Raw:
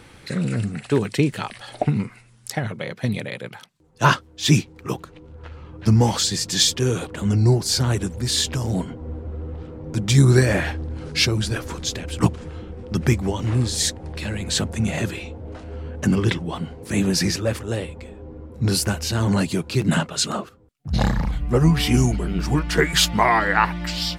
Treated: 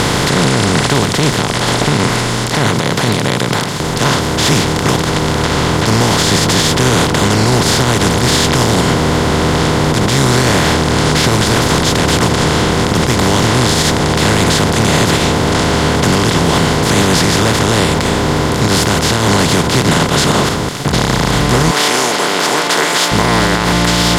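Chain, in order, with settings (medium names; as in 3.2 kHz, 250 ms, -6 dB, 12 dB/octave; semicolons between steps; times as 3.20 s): spectral levelling over time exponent 0.2; 21.71–23.12 s: high-pass 410 Hz 12 dB/octave; peak limiter -0.5 dBFS, peak gain reduction 10 dB; trim -1 dB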